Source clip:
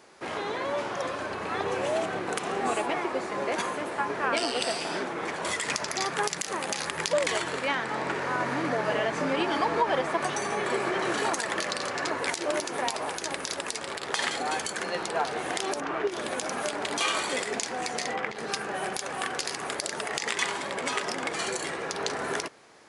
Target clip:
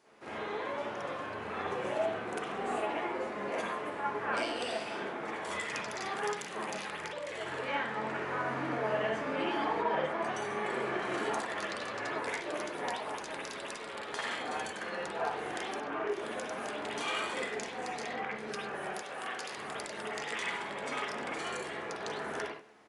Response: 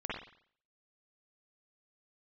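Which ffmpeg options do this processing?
-filter_complex "[0:a]asettb=1/sr,asplit=3[link_01][link_02][link_03];[link_01]atrim=end=9.834[link_04];[link_02]atrim=start=9.83:end=10.35,asetpts=PTS-STARTPTS,afade=type=in:duration=0.004:curve=qsin,afade=type=out:start_time=0.516:duration=0.004:curve=qsin,highshelf=frequency=9100:gain=-11[link_05];[link_03]atrim=start=10.346[link_06];[link_04][link_05]acrossfade=duration=0.004:curve1=hsin:curve2=qsin[link_07];[link_07][link_06]acrossfade=duration=0.004:curve1=qsin:curve2=hsin,aecho=1:1:97|194|291:0.1|0.045|0.0202,asettb=1/sr,asplit=3[link_08][link_09][link_10];[link_08]atrim=end=6.894[link_11];[link_09]atrim=start=6.89:end=7.42,asetpts=PTS-STARTPTS,afade=type=in:duration=0.004:curve=qsin,afade=type=out:start_time=0.526:duration=0.004:curve=qsin,acompressor=threshold=-29dB:ratio=10[link_12];[link_10]atrim=start=7.416[link_13];[link_11][link_12]acrossfade=duration=0.004:curve1=hsin:curve2=qsin[link_14];[link_14][link_13]acrossfade=duration=0.004:curve1=qsin:curve2=hsin,asettb=1/sr,asplit=3[link_15][link_16][link_17];[link_15]atrim=end=18.874[link_18];[link_16]atrim=start=18.87:end=19.53,asetpts=PTS-STARTPTS,afade=type=in:duration=0.004:curve=qsin,afade=type=out:start_time=0.656:duration=0.004:curve=qsin,highpass=frequency=300:poles=1[link_19];[link_17]atrim=start=19.526[link_20];[link_18][link_19]acrossfade=duration=0.004:curve1=hsin:curve2=qsin[link_21];[link_21][link_20]acrossfade=duration=0.004:curve1=qsin:curve2=hsin[link_22];[1:a]atrim=start_sample=2205,atrim=end_sample=6174[link_23];[link_22][link_23]afir=irnorm=-1:irlink=0,volume=-9dB"

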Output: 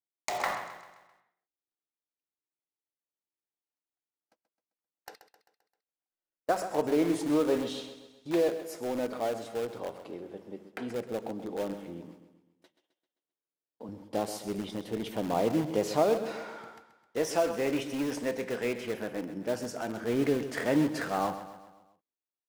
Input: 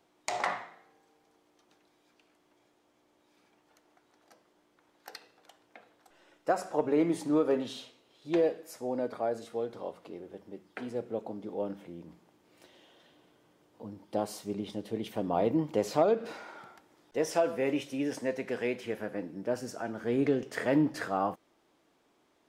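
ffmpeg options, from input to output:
ffmpeg -i in.wav -filter_complex "[0:a]asplit=2[link_01][link_02];[link_02]aeval=exprs='(mod(31.6*val(0)+1,2)-1)/31.6':channel_layout=same,volume=-10.5dB[link_03];[link_01][link_03]amix=inputs=2:normalize=0,asettb=1/sr,asplit=3[link_04][link_05][link_06];[link_04]atrim=end=5.144[link_07];[link_05]atrim=start=5.14:end=6.49,asetpts=PTS-STARTPTS,afade=type=in:duration=0.004:curve=qsin,afade=type=out:start_time=1.346:duration=0.004:curve=qsin,acompressor=threshold=-57dB:ratio=16[link_08];[link_06]atrim=start=6.486[link_09];[link_07][link_08]acrossfade=duration=0.004:curve1=hsin:curve2=qsin[link_10];[link_10][link_09]acrossfade=duration=0.004:curve1=qsin:curve2=hsin,asettb=1/sr,asplit=3[link_11][link_12][link_13];[link_11]atrim=end=12.064[link_14];[link_12]atrim=start=12.06:end=13.89,asetpts=PTS-STARTPTS,afade=type=in:duration=0.004:curve=qsin,afade=type=out:start_time=1.826:duration=0.004:curve=qsin,highpass=210[link_15];[link_13]atrim=start=13.886[link_16];[link_14][link_15]acrossfade=duration=0.004:curve1=hsin:curve2=qsin[link_17];[link_17][link_16]acrossfade=duration=0.004:curve1=qsin:curve2=hsin,agate=range=-41dB:threshold=-53dB:ratio=16:detection=peak,aecho=1:1:131|262|393|524|655:0.251|0.126|0.0628|0.0314|0.0157" out.wav

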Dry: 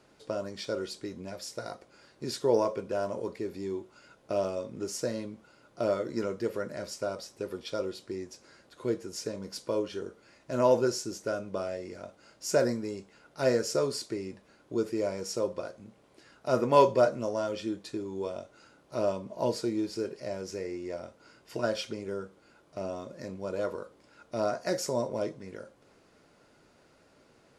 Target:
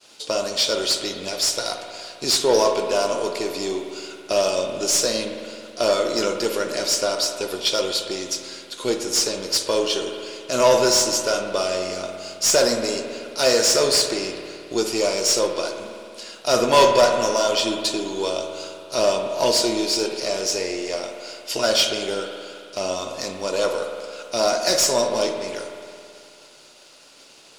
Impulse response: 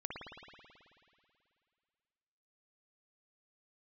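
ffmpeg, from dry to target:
-filter_complex "[0:a]aeval=exprs='if(lt(val(0),0),0.708*val(0),val(0))':channel_layout=same,agate=range=-33dB:threshold=-59dB:ratio=3:detection=peak,aexciter=amount=3.6:drive=8.5:freq=2700,asplit=2[link_01][link_02];[link_02]highpass=frequency=720:poles=1,volume=18dB,asoftclip=type=tanh:threshold=-7dB[link_03];[link_01][link_03]amix=inputs=2:normalize=0,lowpass=frequency=3300:poles=1,volume=-6dB,asplit=2[link_04][link_05];[1:a]atrim=start_sample=2205[link_06];[link_05][link_06]afir=irnorm=-1:irlink=0,volume=0dB[link_07];[link_04][link_07]amix=inputs=2:normalize=0,volume=-2dB"

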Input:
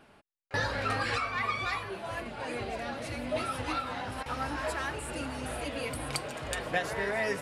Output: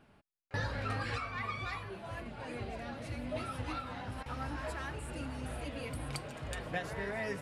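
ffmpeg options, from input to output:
ffmpeg -i in.wav -af "bass=frequency=250:gain=8,treble=frequency=4000:gain=-2,volume=-7.5dB" out.wav

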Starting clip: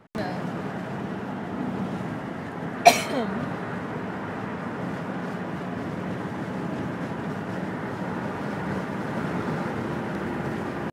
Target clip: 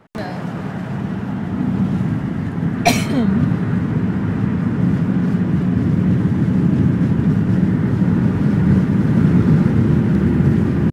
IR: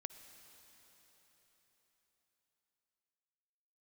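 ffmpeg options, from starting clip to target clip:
-af "asoftclip=type=tanh:threshold=-3.5dB,asubboost=boost=9.5:cutoff=220,volume=3.5dB"

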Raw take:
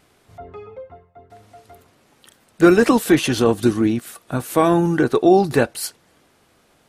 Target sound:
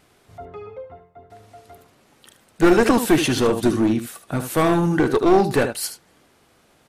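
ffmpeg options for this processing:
ffmpeg -i in.wav -af "aecho=1:1:75:0.282,aeval=exprs='clip(val(0),-1,0.188)':channel_layout=same" out.wav

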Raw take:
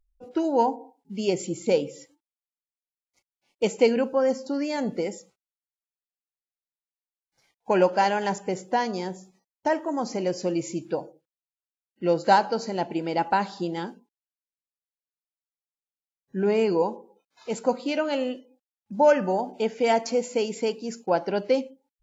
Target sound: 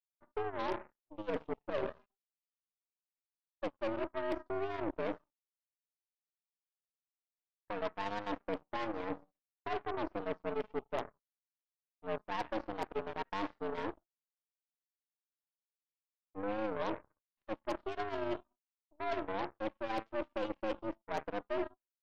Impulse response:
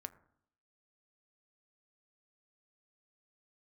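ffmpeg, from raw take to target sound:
-af "adynamicequalizer=threshold=0.0158:dfrequency=440:dqfactor=3.1:tfrequency=440:tqfactor=3.1:attack=5:release=100:ratio=0.375:range=1.5:mode=cutabove:tftype=bell,areverse,acompressor=threshold=-34dB:ratio=20,areverse,tiltshelf=frequency=1400:gain=4.5,highpass=frequency=160:width_type=q:width=0.5412,highpass=frequency=160:width_type=q:width=1.307,lowpass=frequency=3300:width_type=q:width=0.5176,lowpass=frequency=3300:width_type=q:width=0.7071,lowpass=frequency=3300:width_type=q:width=1.932,afreqshift=100,aeval=exprs='0.0708*(cos(1*acos(clip(val(0)/0.0708,-1,1)))-cos(1*PI/2))+0.0126*(cos(4*acos(clip(val(0)/0.0708,-1,1)))-cos(4*PI/2))+0.01*(cos(7*acos(clip(val(0)/0.0708,-1,1)))-cos(7*PI/2))':channel_layout=same,volume=-3.5dB"

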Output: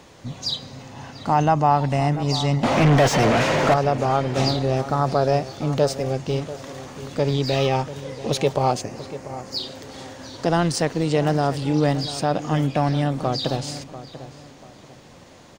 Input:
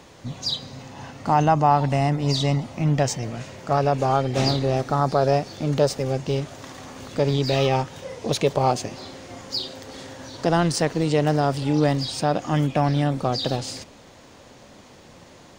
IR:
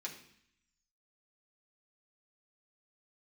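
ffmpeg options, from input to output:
-filter_complex "[0:a]asettb=1/sr,asplit=3[link_01][link_02][link_03];[link_01]atrim=end=2.634[link_04];[link_02]atrim=start=2.63:end=3.74,asetpts=PTS-STARTPTS,afade=type=in:duration=0.004:curve=qsin,afade=type=out:start_time=1.106:duration=0.004:curve=qsin,asplit=2[link_05][link_06];[link_06]highpass=frequency=720:poles=1,volume=36dB,asoftclip=type=tanh:threshold=-7.5dB[link_07];[link_05][link_07]amix=inputs=2:normalize=0,lowpass=frequency=1500:poles=1,volume=-6dB[link_08];[link_03]atrim=start=3.736[link_09];[link_04][link_08]acrossfade=duration=0.004:curve1=hsin:curve2=qsin[link_10];[link_10][link_09]acrossfade=duration=0.004:curve1=qsin:curve2=hsin,asettb=1/sr,asplit=3[link_11][link_12][link_13];[link_11]atrim=end=8.814[link_14];[link_12]atrim=start=8.81:end=9.56,asetpts=PTS-STARTPTS,afade=type=in:duration=0.004:curve=qsin,afade=type=out:start_time=0.746:duration=0.004:curve=qsin,equalizer=frequency=3500:width=2.3:gain=-13[link_15];[link_13]atrim=start=9.556[link_16];[link_14][link_15]acrossfade=duration=0.004:curve1=hsin:curve2=qsin[link_17];[link_17][link_16]acrossfade=duration=0.004:curve1=qsin:curve2=hsin,asplit=2[link_18][link_19];[link_19]adelay=690,lowpass=frequency=2600:poles=1,volume=-14dB,asplit=2[link_20][link_21];[link_21]adelay=690,lowpass=frequency=2600:poles=1,volume=0.31,asplit=2[link_22][link_23];[link_23]adelay=690,lowpass=frequency=2600:poles=1,volume=0.31[link_24];[link_20][link_22][link_24]amix=inputs=3:normalize=0[link_25];[link_18][link_25]amix=inputs=2:normalize=0"

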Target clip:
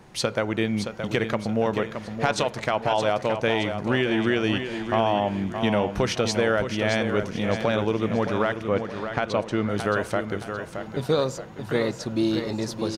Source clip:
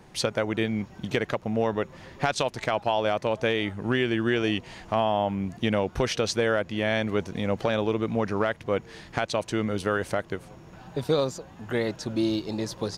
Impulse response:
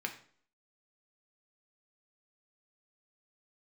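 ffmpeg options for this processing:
-filter_complex "[0:a]asettb=1/sr,asplit=3[link_01][link_02][link_03];[link_01]atrim=end=8.684[link_04];[link_02]atrim=start=8.68:end=9.69,asetpts=PTS-STARTPTS,afade=type=in:duration=0.004:curve=qsin,afade=type=out:start_time=1.006:duration=0.004:curve=qsin,aemphasis=mode=reproduction:type=50fm[link_05];[link_03]atrim=start=9.686[link_06];[link_04][link_05]acrossfade=duration=0.004:curve1=hsin:curve2=qsin[link_07];[link_07][link_06]acrossfade=duration=0.004:curve1=qsin:curve2=hsin,aecho=1:1:621|1242|1863|2484|3105:0.398|0.167|0.0702|0.0295|0.0124,asplit=2[link_08][link_09];[1:a]atrim=start_sample=2205,asetrate=26019,aresample=44100[link_10];[link_09][link_10]afir=irnorm=-1:irlink=0,volume=-16dB[link_11];[link_08][link_11]amix=inputs=2:normalize=0"

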